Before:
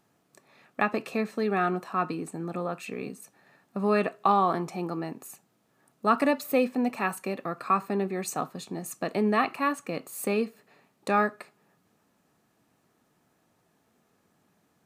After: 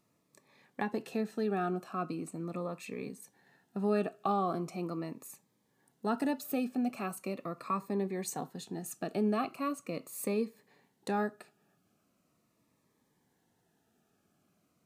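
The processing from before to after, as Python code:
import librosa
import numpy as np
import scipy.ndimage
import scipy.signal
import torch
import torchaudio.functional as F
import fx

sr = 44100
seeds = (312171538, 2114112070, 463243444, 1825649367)

y = fx.dynamic_eq(x, sr, hz=2100.0, q=0.78, threshold_db=-39.0, ratio=4.0, max_db=-7)
y = fx.notch_cascade(y, sr, direction='falling', hz=0.4)
y = y * 10.0 ** (-4.0 / 20.0)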